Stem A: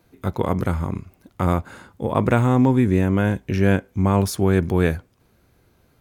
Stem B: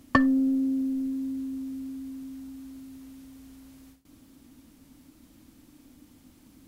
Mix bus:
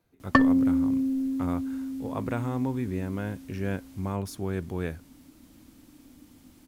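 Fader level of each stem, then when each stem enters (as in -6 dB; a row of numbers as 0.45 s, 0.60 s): -13.0 dB, +1.5 dB; 0.00 s, 0.20 s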